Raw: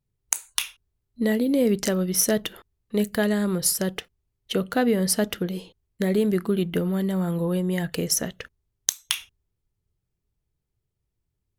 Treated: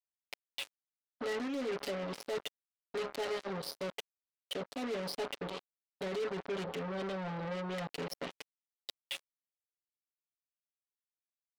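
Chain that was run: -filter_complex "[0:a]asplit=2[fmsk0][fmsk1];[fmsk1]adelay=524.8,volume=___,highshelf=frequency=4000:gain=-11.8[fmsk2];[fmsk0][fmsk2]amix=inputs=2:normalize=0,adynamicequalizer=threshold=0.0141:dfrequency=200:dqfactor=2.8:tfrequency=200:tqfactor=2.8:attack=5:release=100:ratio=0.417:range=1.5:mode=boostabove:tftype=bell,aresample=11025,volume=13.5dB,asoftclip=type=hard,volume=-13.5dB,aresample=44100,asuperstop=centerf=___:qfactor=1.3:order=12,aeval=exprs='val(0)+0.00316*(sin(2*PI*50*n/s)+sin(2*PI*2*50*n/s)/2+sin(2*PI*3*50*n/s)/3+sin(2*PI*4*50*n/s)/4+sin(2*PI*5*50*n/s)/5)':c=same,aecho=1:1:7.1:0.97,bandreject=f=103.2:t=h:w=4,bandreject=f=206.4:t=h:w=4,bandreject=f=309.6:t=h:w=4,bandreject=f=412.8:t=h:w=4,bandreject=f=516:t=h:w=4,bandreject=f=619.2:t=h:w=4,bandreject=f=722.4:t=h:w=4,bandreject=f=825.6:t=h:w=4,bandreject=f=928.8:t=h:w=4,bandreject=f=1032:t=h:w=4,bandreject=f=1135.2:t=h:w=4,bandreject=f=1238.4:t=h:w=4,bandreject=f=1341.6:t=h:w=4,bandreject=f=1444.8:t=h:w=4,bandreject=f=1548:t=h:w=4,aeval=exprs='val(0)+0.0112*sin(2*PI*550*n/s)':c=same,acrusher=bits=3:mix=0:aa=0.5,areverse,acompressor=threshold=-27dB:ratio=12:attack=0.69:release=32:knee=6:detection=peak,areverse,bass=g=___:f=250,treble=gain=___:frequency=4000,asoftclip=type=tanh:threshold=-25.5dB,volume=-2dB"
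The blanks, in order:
-23dB, 1300, -12, -2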